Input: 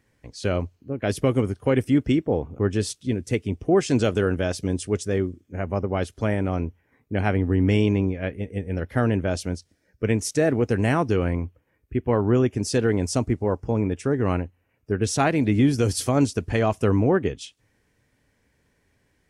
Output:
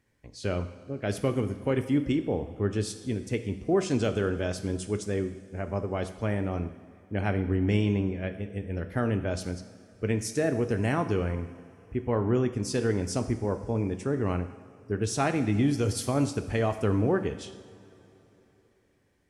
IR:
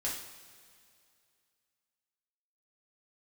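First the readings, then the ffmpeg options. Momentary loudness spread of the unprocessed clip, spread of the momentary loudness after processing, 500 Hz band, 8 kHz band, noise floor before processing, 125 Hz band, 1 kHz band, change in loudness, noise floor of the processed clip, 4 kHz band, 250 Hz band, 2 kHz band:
10 LU, 10 LU, −5.5 dB, −5.5 dB, −69 dBFS, −5.0 dB, −5.5 dB, −5.5 dB, −63 dBFS, −5.5 dB, −5.5 dB, −5.5 dB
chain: -filter_complex "[0:a]asplit=2[link_01][link_02];[1:a]atrim=start_sample=2205,asetrate=29547,aresample=44100[link_03];[link_02][link_03]afir=irnorm=-1:irlink=0,volume=-12.5dB[link_04];[link_01][link_04]amix=inputs=2:normalize=0,volume=-7.5dB"

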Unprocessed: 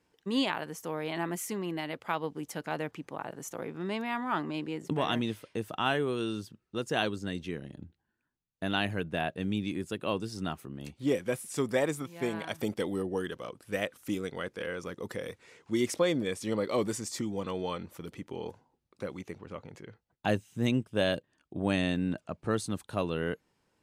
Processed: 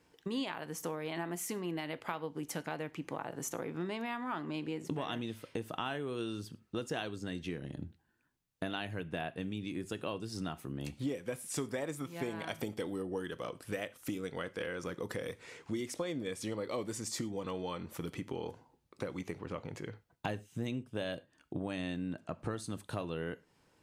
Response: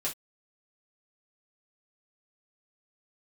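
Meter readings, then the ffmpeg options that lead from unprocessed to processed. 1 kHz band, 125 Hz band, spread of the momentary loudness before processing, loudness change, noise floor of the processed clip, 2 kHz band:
−6.5 dB, −5.0 dB, 12 LU, −6.5 dB, −72 dBFS, −6.5 dB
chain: -filter_complex "[0:a]acompressor=threshold=-40dB:ratio=6,asplit=2[link_01][link_02];[1:a]atrim=start_sample=2205,asetrate=28224,aresample=44100[link_03];[link_02][link_03]afir=irnorm=-1:irlink=0,volume=-19.5dB[link_04];[link_01][link_04]amix=inputs=2:normalize=0,volume=4dB"

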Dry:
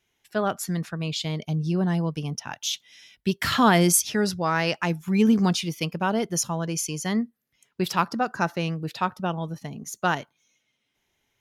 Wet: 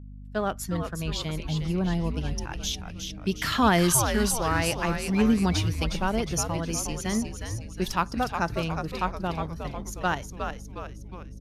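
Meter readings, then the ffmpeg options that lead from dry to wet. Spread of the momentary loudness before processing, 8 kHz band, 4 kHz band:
11 LU, −1.5 dB, −2.0 dB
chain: -filter_complex "[0:a]agate=range=-20dB:threshold=-47dB:ratio=16:detection=peak,asplit=2[link_01][link_02];[link_02]aeval=exprs='sgn(val(0))*max(abs(val(0))-0.0106,0)':channel_layout=same,volume=-6.5dB[link_03];[link_01][link_03]amix=inputs=2:normalize=0,aresample=32000,aresample=44100,aeval=exprs='val(0)+0.0178*(sin(2*PI*50*n/s)+sin(2*PI*2*50*n/s)/2+sin(2*PI*3*50*n/s)/3+sin(2*PI*4*50*n/s)/4+sin(2*PI*5*50*n/s)/5)':channel_layout=same,asplit=7[link_04][link_05][link_06][link_07][link_08][link_09][link_10];[link_05]adelay=361,afreqshift=-120,volume=-6dB[link_11];[link_06]adelay=722,afreqshift=-240,volume=-11.8dB[link_12];[link_07]adelay=1083,afreqshift=-360,volume=-17.7dB[link_13];[link_08]adelay=1444,afreqshift=-480,volume=-23.5dB[link_14];[link_09]adelay=1805,afreqshift=-600,volume=-29.4dB[link_15];[link_10]adelay=2166,afreqshift=-720,volume=-35.2dB[link_16];[link_04][link_11][link_12][link_13][link_14][link_15][link_16]amix=inputs=7:normalize=0,volume=-6dB"

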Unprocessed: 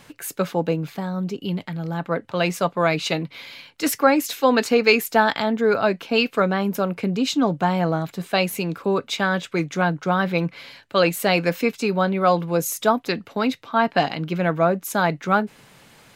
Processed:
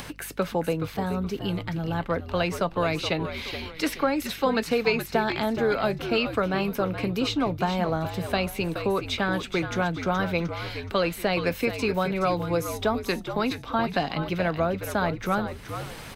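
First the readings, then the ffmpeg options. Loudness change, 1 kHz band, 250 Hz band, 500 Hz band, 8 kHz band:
−5.0 dB, −6.0 dB, −4.5 dB, −5.0 dB, −8.5 dB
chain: -filter_complex "[0:a]acrossover=split=430|4100[link_01][link_02][link_03];[link_01]acompressor=threshold=-28dB:ratio=4[link_04];[link_02]acompressor=threshold=-25dB:ratio=4[link_05];[link_03]acompressor=threshold=-41dB:ratio=4[link_06];[link_04][link_05][link_06]amix=inputs=3:normalize=0,bandreject=frequency=7000:width=10,acompressor=mode=upward:threshold=-31dB:ratio=2.5,aeval=exprs='val(0)+0.00355*(sin(2*PI*50*n/s)+sin(2*PI*2*50*n/s)/2+sin(2*PI*3*50*n/s)/3+sin(2*PI*4*50*n/s)/4+sin(2*PI*5*50*n/s)/5)':channel_layout=same,asplit=5[link_07][link_08][link_09][link_10][link_11];[link_08]adelay=423,afreqshift=-77,volume=-9dB[link_12];[link_09]adelay=846,afreqshift=-154,volume=-17.6dB[link_13];[link_10]adelay=1269,afreqshift=-231,volume=-26.3dB[link_14];[link_11]adelay=1692,afreqshift=-308,volume=-34.9dB[link_15];[link_07][link_12][link_13][link_14][link_15]amix=inputs=5:normalize=0"

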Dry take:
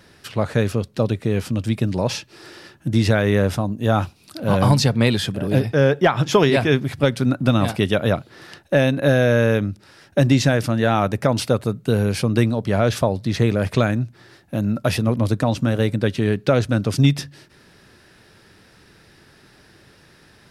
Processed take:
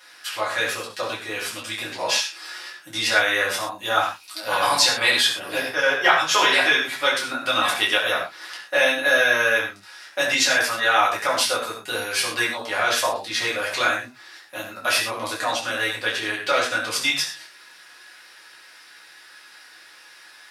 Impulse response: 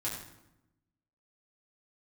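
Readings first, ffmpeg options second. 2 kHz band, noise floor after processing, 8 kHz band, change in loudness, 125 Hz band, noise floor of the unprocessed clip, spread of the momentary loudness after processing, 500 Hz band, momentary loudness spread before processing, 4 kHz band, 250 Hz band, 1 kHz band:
+8.0 dB, −48 dBFS, +7.5 dB, −1.0 dB, −27.0 dB, −52 dBFS, 13 LU, −6.5 dB, 8 LU, +7.5 dB, −16.5 dB, +3.0 dB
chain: -filter_complex "[0:a]highpass=1200[link_01];[1:a]atrim=start_sample=2205,afade=type=out:start_time=0.19:duration=0.01,atrim=end_sample=8820[link_02];[link_01][link_02]afir=irnorm=-1:irlink=0,volume=5.5dB"

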